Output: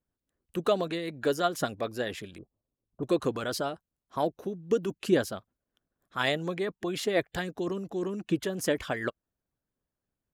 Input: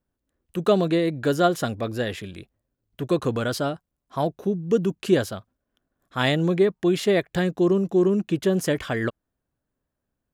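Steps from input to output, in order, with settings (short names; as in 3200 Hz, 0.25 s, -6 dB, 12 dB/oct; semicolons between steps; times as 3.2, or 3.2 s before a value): 2.38–3.03 elliptic low-pass 1200 Hz; harmonic-percussive split harmonic -11 dB; gain -2.5 dB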